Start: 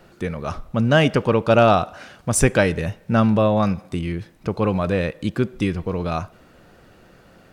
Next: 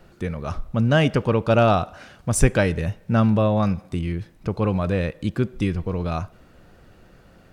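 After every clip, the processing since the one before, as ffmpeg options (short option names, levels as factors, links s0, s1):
-af "lowshelf=f=110:g=9.5,volume=0.668"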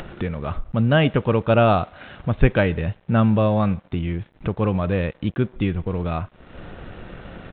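-af "acompressor=mode=upward:threshold=0.0794:ratio=2.5,aresample=8000,aeval=exprs='sgn(val(0))*max(abs(val(0))-0.00473,0)':c=same,aresample=44100,volume=1.12"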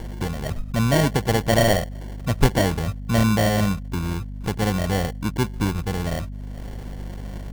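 -af "acrusher=samples=35:mix=1:aa=0.000001,aeval=exprs='val(0)+0.0316*(sin(2*PI*50*n/s)+sin(2*PI*2*50*n/s)/2+sin(2*PI*3*50*n/s)/3+sin(2*PI*4*50*n/s)/4+sin(2*PI*5*50*n/s)/5)':c=same,volume=0.841"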